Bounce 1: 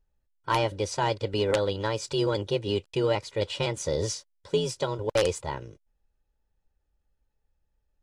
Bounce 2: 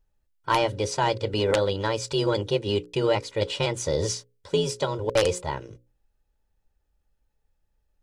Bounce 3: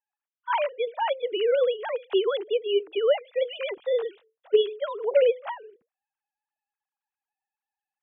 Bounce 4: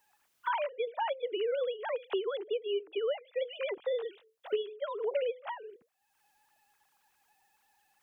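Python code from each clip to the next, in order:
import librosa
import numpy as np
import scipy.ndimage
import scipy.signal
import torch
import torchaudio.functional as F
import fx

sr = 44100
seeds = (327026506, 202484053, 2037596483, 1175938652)

y1 = fx.hum_notches(x, sr, base_hz=60, count=9)
y1 = y1 * librosa.db_to_amplitude(3.0)
y2 = fx.sine_speech(y1, sr)
y3 = fx.band_squash(y2, sr, depth_pct=100)
y3 = y3 * librosa.db_to_amplitude(-9.0)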